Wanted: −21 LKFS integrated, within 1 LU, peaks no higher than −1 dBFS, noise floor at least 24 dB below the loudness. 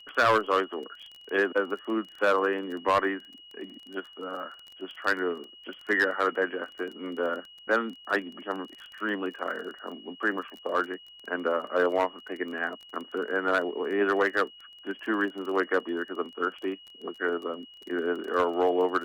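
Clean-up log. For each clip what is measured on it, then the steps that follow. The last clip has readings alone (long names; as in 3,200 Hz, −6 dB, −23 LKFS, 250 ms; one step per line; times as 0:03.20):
crackle rate 22 per second; interfering tone 2,900 Hz; level of the tone −48 dBFS; integrated loudness −29.0 LKFS; sample peak −15.0 dBFS; target loudness −21.0 LKFS
→ click removal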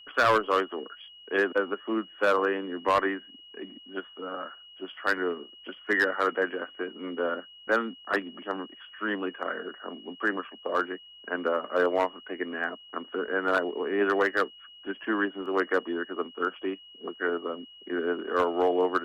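crackle rate 0.053 per second; interfering tone 2,900 Hz; level of the tone −48 dBFS
→ notch filter 2,900 Hz, Q 30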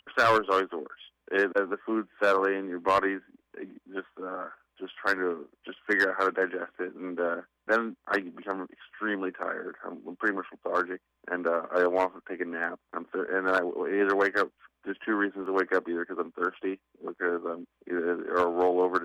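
interfering tone none found; integrated loudness −29.0 LKFS; sample peak −11.0 dBFS; target loudness −21.0 LKFS
→ level +8 dB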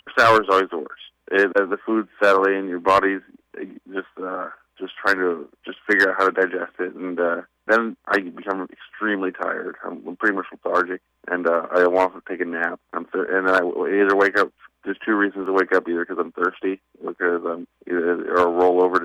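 integrated loudness −21.0 LKFS; sample peak −3.0 dBFS; background noise floor −71 dBFS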